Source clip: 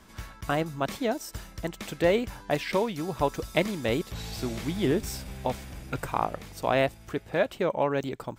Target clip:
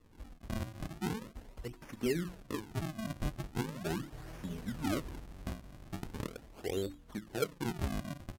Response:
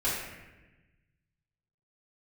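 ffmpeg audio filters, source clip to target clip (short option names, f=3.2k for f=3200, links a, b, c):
-filter_complex "[0:a]bandreject=f=50:t=h:w=6,bandreject=f=100:t=h:w=6,bandreject=f=150:t=h:w=6,bandreject=f=200:t=h:w=6,bandreject=f=250:t=h:w=6,bandreject=f=300:t=h:w=6,bandreject=f=350:t=h:w=6,bandreject=f=400:t=h:w=6,bandreject=f=450:t=h:w=6,bandreject=f=500:t=h:w=6,acrossover=split=110|720|7300[a][b][c][d];[c]acompressor=threshold=-45dB:ratio=12[e];[a][b][e][d]amix=inputs=4:normalize=0,flanger=delay=1.7:depth=3.3:regen=25:speed=0.6:shape=triangular,acrusher=samples=41:mix=1:aa=0.000001:lfo=1:lforange=65.6:lforate=0.4,asetrate=32097,aresample=44100,atempo=1.37395,volume=-3.5dB"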